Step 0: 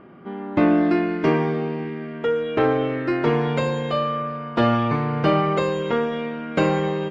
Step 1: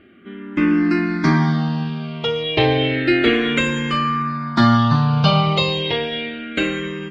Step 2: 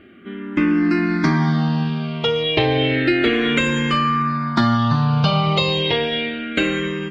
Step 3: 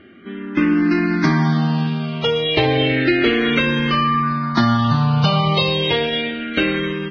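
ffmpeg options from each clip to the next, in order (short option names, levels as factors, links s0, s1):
-filter_complex "[0:a]equalizer=f=500:t=o:w=1:g=-11,equalizer=f=1000:t=o:w=1:g=-4,equalizer=f=4000:t=o:w=1:g=9,dynaudnorm=f=200:g=11:m=3.76,asplit=2[s0][s1];[s1]afreqshift=-0.31[s2];[s0][s2]amix=inputs=2:normalize=1,volume=1.5"
-af "acompressor=threshold=0.141:ratio=4,volume=1.41"
-af "volume=1.12" -ar 16000 -c:a libvorbis -b:a 16k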